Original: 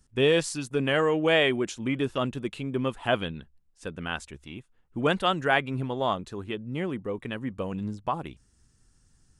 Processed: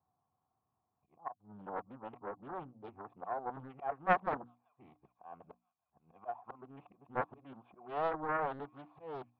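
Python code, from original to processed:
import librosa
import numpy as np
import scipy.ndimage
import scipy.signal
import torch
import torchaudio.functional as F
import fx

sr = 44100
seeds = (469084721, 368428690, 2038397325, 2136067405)

p1 = np.flip(x).copy()
p2 = scipy.signal.sosfilt(scipy.signal.butter(4, 91.0, 'highpass', fs=sr, output='sos'), p1)
p3 = fx.high_shelf(p2, sr, hz=3400.0, db=-3.0)
p4 = fx.auto_swell(p3, sr, attack_ms=309.0)
p5 = fx.over_compress(p4, sr, threshold_db=-28.0, ratio=-1.0)
p6 = p4 + F.gain(torch.from_numpy(p5), -3.0).numpy()
p7 = fx.formant_cascade(p6, sr, vowel='a')
p8 = fx.hum_notches(p7, sr, base_hz=60, count=5)
p9 = p8 + fx.echo_wet_highpass(p8, sr, ms=387, feedback_pct=52, hz=3000.0, wet_db=-19.5, dry=0)
p10 = fx.doppler_dist(p9, sr, depth_ms=0.68)
y = F.gain(torch.from_numpy(p10), 2.5).numpy()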